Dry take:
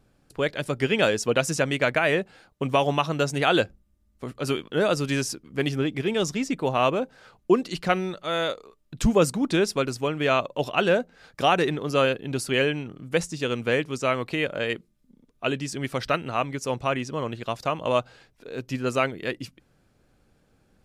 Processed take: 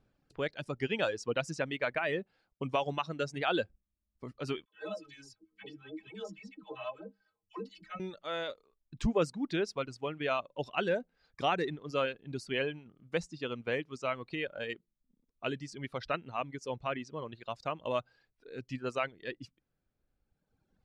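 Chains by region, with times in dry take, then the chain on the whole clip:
0:04.65–0:08.00: stiff-string resonator 94 Hz, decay 0.31 s, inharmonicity 0.03 + all-pass dispersion lows, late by 95 ms, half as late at 610 Hz
whole clip: reverb reduction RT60 1.8 s; low-pass filter 5,100 Hz 12 dB per octave; level −9 dB

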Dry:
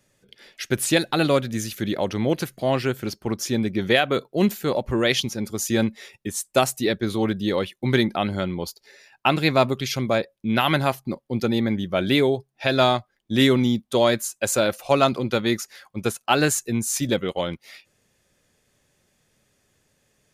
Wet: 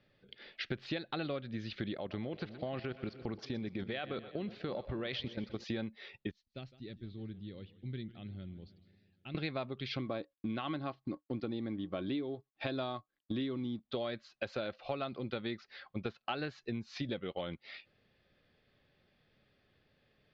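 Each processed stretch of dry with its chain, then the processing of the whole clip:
0:01.97–0:05.64: output level in coarse steps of 14 dB + echo with a time of its own for lows and highs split 450 Hz, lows 299 ms, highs 122 ms, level −15.5 dB
0:06.31–0:09.35: guitar amp tone stack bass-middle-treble 10-0-1 + feedback echo with a swinging delay time 154 ms, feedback 63%, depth 160 cents, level −18 dB
0:09.96–0:13.80: mu-law and A-law mismatch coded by A + dynamic equaliser 2,000 Hz, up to −5 dB, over −36 dBFS, Q 1 + hollow resonant body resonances 300/1,100 Hz, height 12 dB, ringing for 90 ms
whole clip: Butterworth low-pass 4,500 Hz 48 dB per octave; notch filter 960 Hz, Q 9.5; downward compressor 8 to 1, threshold −31 dBFS; level −4 dB

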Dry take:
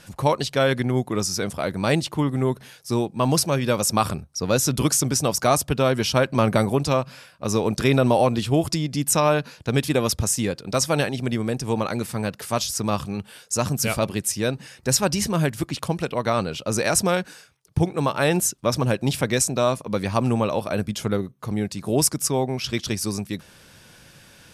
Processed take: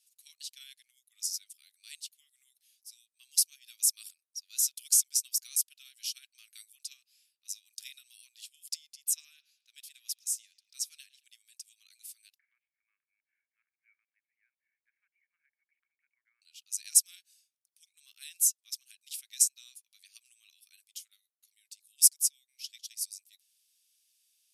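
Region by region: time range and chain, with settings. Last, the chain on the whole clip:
0:08.95–0:11.24: high-shelf EQ 3,100 Hz −5 dB + bucket-brigade delay 110 ms, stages 4,096, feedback 46%, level −16 dB
0:12.38–0:16.42: Chebyshev low-pass with heavy ripple 2,300 Hz, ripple 6 dB + multiband upward and downward compressor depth 70%
whole clip: inverse Chebyshev high-pass filter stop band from 560 Hz, stop band 70 dB; first difference; expander for the loud parts 1.5 to 1, over −49 dBFS

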